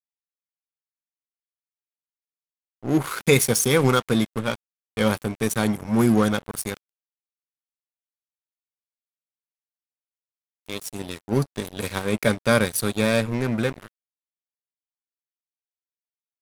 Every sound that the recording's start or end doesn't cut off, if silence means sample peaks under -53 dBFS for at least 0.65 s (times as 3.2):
2.83–6.77
10.66–13.88